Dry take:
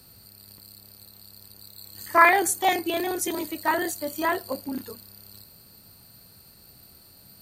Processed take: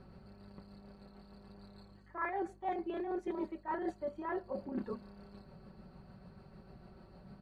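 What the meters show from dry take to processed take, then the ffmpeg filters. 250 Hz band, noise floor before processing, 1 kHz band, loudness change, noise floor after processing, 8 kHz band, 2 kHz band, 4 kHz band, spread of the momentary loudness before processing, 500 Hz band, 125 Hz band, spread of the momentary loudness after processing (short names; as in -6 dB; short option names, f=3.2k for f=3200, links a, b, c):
-9.0 dB, -53 dBFS, -17.0 dB, -16.0 dB, -59 dBFS, under -40 dB, -22.0 dB, -27.5 dB, 24 LU, -11.0 dB, -4.0 dB, 19 LU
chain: -af "lowpass=1.2k,aecho=1:1:5.3:0.67,areverse,acompressor=threshold=-37dB:ratio=10,areverse,aeval=exprs='val(0)+0.000708*(sin(2*PI*50*n/s)+sin(2*PI*2*50*n/s)/2+sin(2*PI*3*50*n/s)/3+sin(2*PI*4*50*n/s)/4+sin(2*PI*5*50*n/s)/5)':c=same,tremolo=f=6.7:d=0.33,volume=3dB"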